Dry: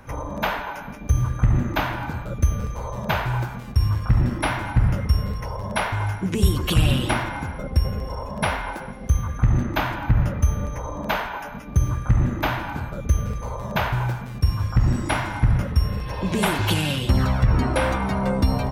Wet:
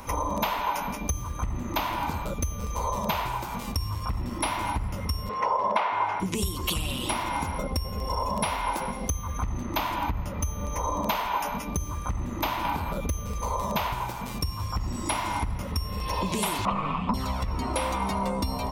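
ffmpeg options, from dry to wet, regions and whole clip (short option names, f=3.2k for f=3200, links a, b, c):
-filter_complex "[0:a]asettb=1/sr,asplit=3[a][b][c];[a]atrim=end=5.294[d];[b]atrim=start=5.29:end=6.2,asetpts=PTS-STARTPTS,afade=t=in:d=0.004:c=qsin,afade=t=out:st=0.906:d=0.004:c=qsin,highpass=410,lowpass=2.1k,acontrast=74[e];[c]atrim=start=6.196[f];[d][e]acrossfade=d=0.004:c1=hsin:c2=qsin[g];[g][f]acrossfade=d=0.004:c1=qsin:c2=hsin,asettb=1/sr,asplit=3[h][i][j];[h]atrim=end=12.654[k];[i]atrim=start=12.65:end=13.13,asetpts=PTS-STARTPTS,afade=t=in:d=0.004:c=qsin,afade=t=out:st=0.476:d=0.004:c=qsin,equalizer=f=6.8k:t=o:w=0.57:g=-6.5,acompressor=mode=upward:threshold=-21dB:ratio=2.5:attack=3.2:release=140:knee=2.83:detection=peak[l];[j]atrim=start=13.126[m];[k][l]acrossfade=d=0.004:c1=hsin:c2=qsin[n];[n][m]acrossfade=d=0.004:c1=qsin:c2=hsin,asettb=1/sr,asplit=3[o][p][q];[o]atrim=end=16.654[r];[p]atrim=start=16.65:end=17.14,asetpts=PTS-STARTPTS,afade=t=in:d=0.004:c=qsin,afade=t=out:st=0.486:d=0.004:c=qsin,lowpass=f=1.4k:t=q:w=6.1,afreqshift=-300[s];[q]atrim=start=17.136[t];[r][s]acrossfade=d=0.004:c1=hsin:c2=qsin[u];[u][t]acrossfade=d=0.004:c1=qsin:c2=hsin,highshelf=f=3.2k:g=10.5,acompressor=threshold=-29dB:ratio=6,equalizer=f=125:t=o:w=0.33:g=-12,equalizer=f=1k:t=o:w=0.33:g=8,equalizer=f=1.6k:t=o:w=0.33:g=-10,volume=3.5dB"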